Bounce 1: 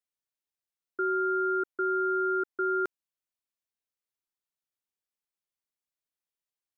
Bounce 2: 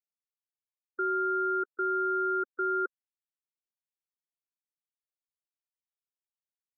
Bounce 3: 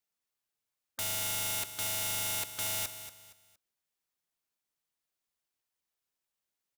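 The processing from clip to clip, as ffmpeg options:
ffmpeg -i in.wav -af "afftfilt=real='re*gte(hypot(re,im),0.0282)':imag='im*gte(hypot(re,im),0.0282)':win_size=1024:overlap=0.75,highpass=360" out.wav
ffmpeg -i in.wav -filter_complex "[0:a]aeval=exprs='(mod(66.8*val(0)+1,2)-1)/66.8':channel_layout=same,asplit=2[link_01][link_02];[link_02]aecho=0:1:233|466|699:0.266|0.0825|0.0256[link_03];[link_01][link_03]amix=inputs=2:normalize=0,volume=7.5dB" out.wav

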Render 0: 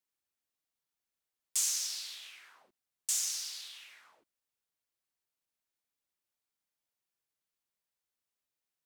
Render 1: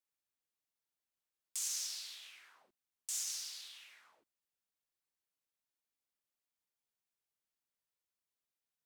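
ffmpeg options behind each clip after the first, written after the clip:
ffmpeg -i in.wav -af "alimiter=limit=-23.5dB:level=0:latency=1:release=44,volume=-4.5dB" out.wav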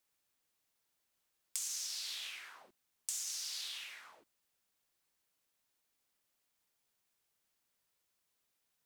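ffmpeg -i in.wav -af "acompressor=threshold=-47dB:ratio=10,volume=10dB" out.wav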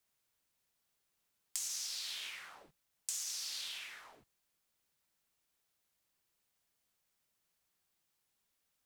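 ffmpeg -i in.wav -af "afreqshift=-210" out.wav

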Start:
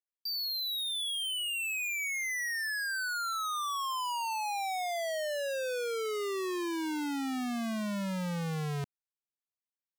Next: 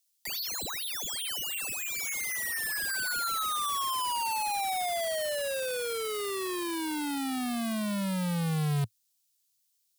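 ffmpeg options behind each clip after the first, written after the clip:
ffmpeg -i in.wav -filter_complex "[0:a]equalizer=frequency=110:width=1.5:gain=12,acrossover=split=390|700|3600[link_01][link_02][link_03][link_04];[link_04]aeval=exprs='0.0237*sin(PI/2*8.91*val(0)/0.0237)':channel_layout=same[link_05];[link_01][link_02][link_03][link_05]amix=inputs=4:normalize=0" out.wav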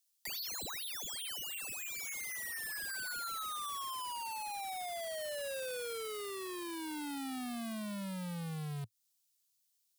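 ffmpeg -i in.wav -af "acompressor=threshold=-35dB:ratio=6,volume=-3.5dB" out.wav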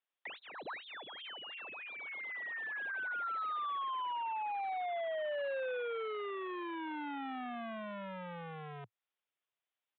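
ffmpeg -i in.wav -filter_complex "[0:a]highpass=frequency=110:width=0.5412,highpass=frequency=110:width=1.3066,aresample=8000,aresample=44100,acrossover=split=340 2500:gain=0.158 1 0.126[link_01][link_02][link_03];[link_01][link_02][link_03]amix=inputs=3:normalize=0,volume=5dB" out.wav

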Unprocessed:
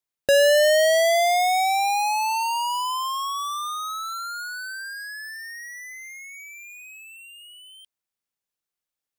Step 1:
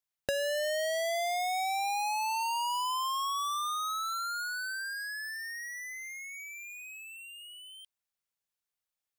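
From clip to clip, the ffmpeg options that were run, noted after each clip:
ffmpeg -i in.wav -af "equalizer=frequency=310:width_type=o:width=1.1:gain=-7.5,acompressor=threshold=-28dB:ratio=6,volume=-2.5dB" out.wav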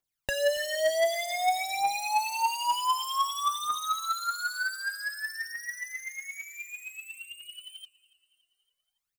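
ffmpeg -i in.wav -af "aphaser=in_gain=1:out_gain=1:delay=3.4:decay=0.71:speed=0.54:type=triangular,aecho=1:1:282|564|846|1128:0.0794|0.0453|0.0258|0.0147" out.wav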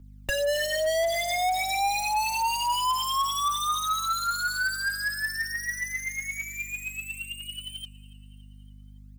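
ffmpeg -i in.wav -filter_complex "[0:a]aeval=exprs='val(0)+0.00224*(sin(2*PI*50*n/s)+sin(2*PI*2*50*n/s)/2+sin(2*PI*3*50*n/s)/3+sin(2*PI*4*50*n/s)/4+sin(2*PI*5*50*n/s)/5)':channel_layout=same,acrossover=split=100[link_01][link_02];[link_02]asoftclip=type=tanh:threshold=-29.5dB[link_03];[link_01][link_03]amix=inputs=2:normalize=0,volume=7dB" out.wav

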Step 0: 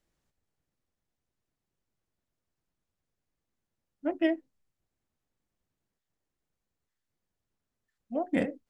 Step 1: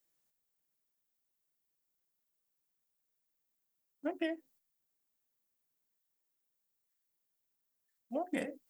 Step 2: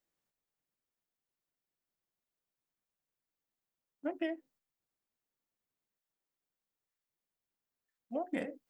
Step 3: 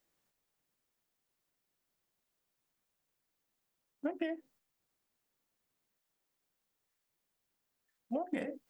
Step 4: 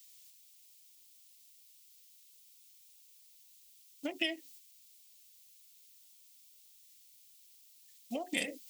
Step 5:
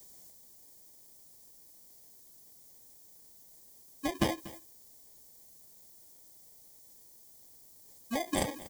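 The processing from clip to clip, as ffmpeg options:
ffmpeg -i in.wav -af "agate=range=-7dB:threshold=-59dB:ratio=16:detection=peak,aemphasis=mode=production:type=bsi,acompressor=threshold=-32dB:ratio=6" out.wav
ffmpeg -i in.wav -af "highshelf=frequency=5200:gain=-12" out.wav
ffmpeg -i in.wav -af "acompressor=threshold=-39dB:ratio=10,volume=7dB" out.wav
ffmpeg -i in.wav -af "aexciter=amount=7.9:drive=8.9:freq=2300,volume=-2.5dB" out.wav
ffmpeg -i in.wav -filter_complex "[0:a]acrossover=split=4300[link_01][link_02];[link_01]acrusher=samples=32:mix=1:aa=0.000001[link_03];[link_03][link_02]amix=inputs=2:normalize=0,aecho=1:1:239:0.119,volume=4.5dB" out.wav

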